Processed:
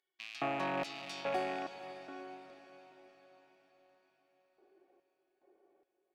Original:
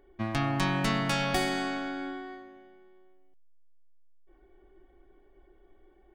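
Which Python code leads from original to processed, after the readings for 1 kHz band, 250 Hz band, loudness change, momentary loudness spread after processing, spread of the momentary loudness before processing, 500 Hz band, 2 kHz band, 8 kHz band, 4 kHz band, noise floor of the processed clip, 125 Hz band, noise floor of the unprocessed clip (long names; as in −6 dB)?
−6.0 dB, −13.5 dB, −9.5 dB, 20 LU, 13 LU, −4.0 dB, −10.0 dB, −15.5 dB, −11.5 dB, −83 dBFS, −21.0 dB, −61 dBFS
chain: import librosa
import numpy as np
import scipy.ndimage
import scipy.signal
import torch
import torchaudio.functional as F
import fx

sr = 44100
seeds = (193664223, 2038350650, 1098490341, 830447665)

p1 = fx.rattle_buzz(x, sr, strikes_db=-36.0, level_db=-19.0)
p2 = scipy.signal.sosfilt(scipy.signal.butter(2, 100.0, 'highpass', fs=sr, output='sos'), p1)
p3 = fx.tilt_eq(p2, sr, slope=-4.5)
p4 = fx.filter_lfo_highpass(p3, sr, shape='square', hz=1.2, low_hz=560.0, high_hz=4400.0, q=1.5)
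p5 = 10.0 ** (-26.5 / 20.0) * np.tanh(p4 / 10.0 ** (-26.5 / 20.0))
p6 = p4 + F.gain(torch.from_numpy(p5), -8.5).numpy()
p7 = fx.rider(p6, sr, range_db=10, speed_s=0.5)
p8 = p7 + fx.echo_diffused(p7, sr, ms=495, feedback_pct=52, wet_db=-13.0, dry=0)
y = F.gain(torch.from_numpy(p8), -8.0).numpy()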